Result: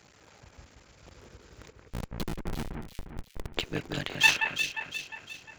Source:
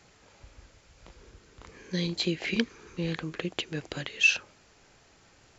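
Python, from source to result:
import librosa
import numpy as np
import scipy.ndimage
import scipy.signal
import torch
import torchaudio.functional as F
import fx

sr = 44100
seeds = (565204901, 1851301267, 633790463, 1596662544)

p1 = fx.cycle_switch(x, sr, every=3, mode='muted')
p2 = scipy.signal.sosfilt(scipy.signal.butter(2, 54.0, 'highpass', fs=sr, output='sos'), p1)
p3 = fx.schmitt(p2, sr, flips_db=-24.5, at=(1.7, 3.55))
p4 = p3 + fx.echo_alternate(p3, sr, ms=177, hz=2300.0, feedback_pct=67, wet_db=-4, dry=0)
y = p4 * 10.0 ** (2.5 / 20.0)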